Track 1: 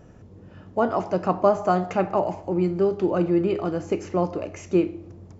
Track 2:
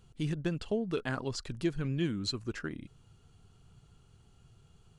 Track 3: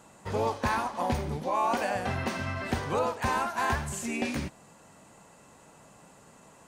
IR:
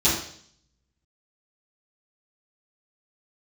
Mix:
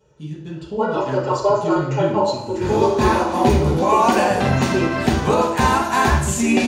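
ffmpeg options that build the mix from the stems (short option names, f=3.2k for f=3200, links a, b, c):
-filter_complex "[0:a]highpass=f=420:w=0.5412,highpass=f=420:w=1.3066,aecho=1:1:2.1:0.92,volume=-18dB,asplit=2[a][b];[b]volume=-4.5dB[c];[1:a]volume=-14.5dB,asplit=3[d][e][f];[e]volume=-6.5dB[g];[2:a]adelay=2350,volume=2dB,asplit=2[h][i];[i]volume=-17dB[j];[f]apad=whole_len=398104[k];[h][k]sidechaincompress=threshold=-59dB:ratio=8:attack=16:release=945[l];[3:a]atrim=start_sample=2205[m];[c][g][j]amix=inputs=3:normalize=0[n];[n][m]afir=irnorm=-1:irlink=0[o];[a][d][l][o]amix=inputs=4:normalize=0,dynaudnorm=f=160:g=9:m=8.5dB"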